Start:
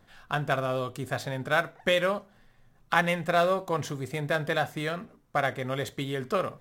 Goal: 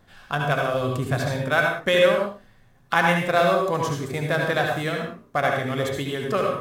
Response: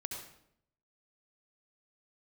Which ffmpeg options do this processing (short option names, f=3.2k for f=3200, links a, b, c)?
-filter_complex "[0:a]asettb=1/sr,asplit=3[a][b][c];[a]atrim=end=0.744[d];[b]atrim=start=0.74:end=1.31,asetpts=PTS-STARTPTS,afade=t=in:d=0.004:c=qsin,afade=t=out:st=0.566:d=0.004:c=qsin,lowshelf=f=190:g=7.5[e];[c]atrim=start=1.306[f];[d][e]acrossfade=d=0.004:c1=hsin:c2=qsin[g];[g][f]acrossfade=d=0.004:c1=qsin:c2=hsin[h];[1:a]atrim=start_sample=2205,afade=t=out:st=0.25:d=0.01,atrim=end_sample=11466[i];[h][i]afir=irnorm=-1:irlink=0,volume=6dB"